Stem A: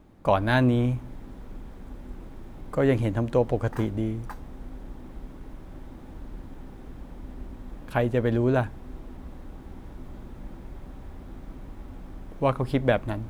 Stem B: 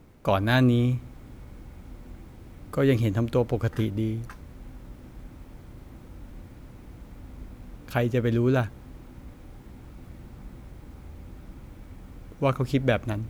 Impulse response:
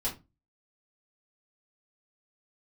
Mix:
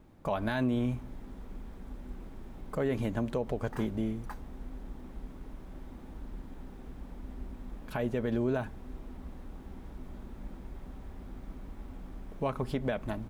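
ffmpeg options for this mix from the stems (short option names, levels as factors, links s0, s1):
-filter_complex "[0:a]volume=0.631[s0];[1:a]adelay=4.5,volume=0.224[s1];[s0][s1]amix=inputs=2:normalize=0,alimiter=limit=0.0891:level=0:latency=1:release=86"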